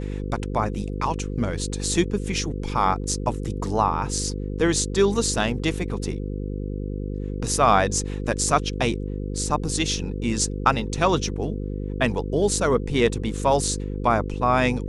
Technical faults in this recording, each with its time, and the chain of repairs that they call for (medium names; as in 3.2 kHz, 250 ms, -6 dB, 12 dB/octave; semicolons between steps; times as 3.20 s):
buzz 50 Hz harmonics 10 -29 dBFS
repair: de-hum 50 Hz, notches 10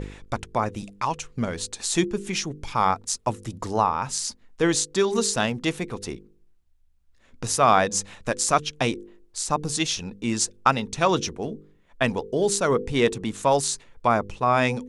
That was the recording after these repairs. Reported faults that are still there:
nothing left